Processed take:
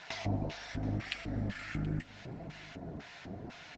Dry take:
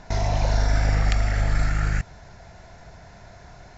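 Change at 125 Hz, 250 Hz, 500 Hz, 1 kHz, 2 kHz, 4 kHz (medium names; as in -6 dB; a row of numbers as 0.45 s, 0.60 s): -13.0 dB, -3.0 dB, -11.5 dB, -15.0 dB, -11.0 dB, -8.0 dB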